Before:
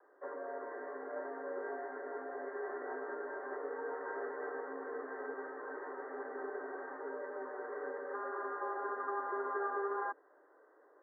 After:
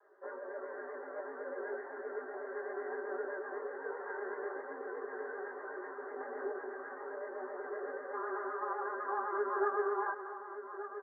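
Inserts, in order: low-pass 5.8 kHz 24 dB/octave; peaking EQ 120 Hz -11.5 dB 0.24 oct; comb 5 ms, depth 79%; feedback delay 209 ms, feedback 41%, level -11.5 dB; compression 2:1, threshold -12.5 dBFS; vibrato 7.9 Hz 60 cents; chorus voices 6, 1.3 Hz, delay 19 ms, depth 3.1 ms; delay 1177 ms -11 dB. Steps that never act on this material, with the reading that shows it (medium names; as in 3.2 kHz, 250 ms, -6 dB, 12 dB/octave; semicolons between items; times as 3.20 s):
low-pass 5.8 kHz: input has nothing above 2 kHz; peaking EQ 120 Hz: input has nothing below 240 Hz; compression, threshold -12.5 dBFS: peak at its input -21.5 dBFS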